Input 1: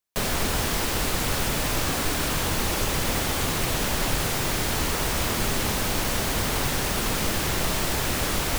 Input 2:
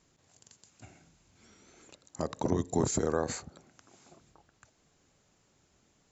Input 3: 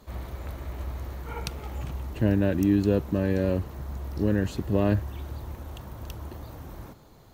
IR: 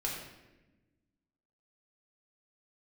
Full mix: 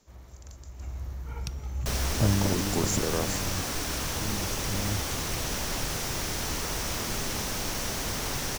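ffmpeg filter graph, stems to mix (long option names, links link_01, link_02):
-filter_complex "[0:a]adelay=1700,volume=-7dB[link_01];[1:a]volume=-1dB[link_02];[2:a]asubboost=boost=5:cutoff=210,volume=-7.5dB,afade=type=in:start_time=0.74:duration=0.28:silence=0.473151,afade=type=out:start_time=2.25:duration=0.48:silence=0.281838[link_03];[link_01][link_02][link_03]amix=inputs=3:normalize=0,equalizer=frequency=5800:width=2.9:gain=7.5"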